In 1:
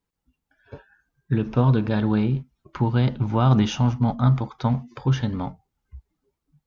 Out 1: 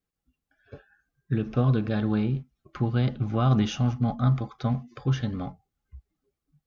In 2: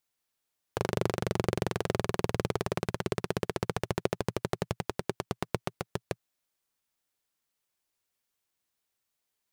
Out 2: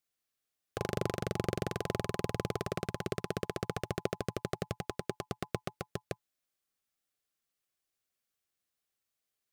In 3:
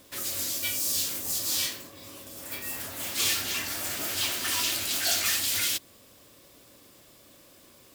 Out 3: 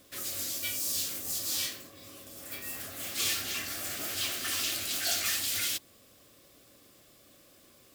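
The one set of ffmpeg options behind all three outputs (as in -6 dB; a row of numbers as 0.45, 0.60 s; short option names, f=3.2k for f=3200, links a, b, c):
-af "asuperstop=centerf=930:order=20:qfactor=6.2,volume=-4dB"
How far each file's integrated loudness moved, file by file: -4.0, -4.0, -4.0 LU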